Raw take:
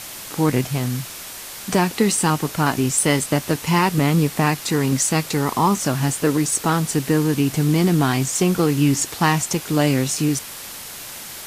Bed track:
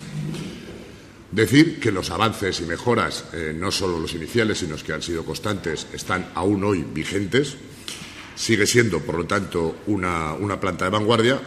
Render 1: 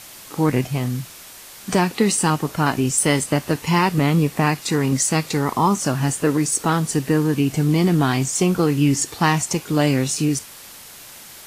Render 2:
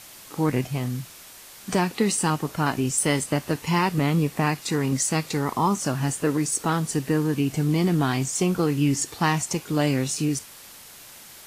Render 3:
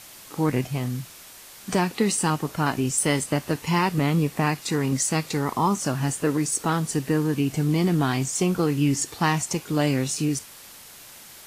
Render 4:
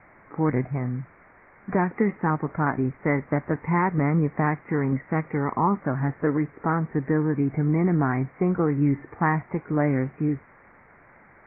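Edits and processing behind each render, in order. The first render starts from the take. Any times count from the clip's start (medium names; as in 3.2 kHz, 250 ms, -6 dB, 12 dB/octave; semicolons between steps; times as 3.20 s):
noise print and reduce 6 dB
trim -4.5 dB
no audible change
steep low-pass 2.2 kHz 96 dB/octave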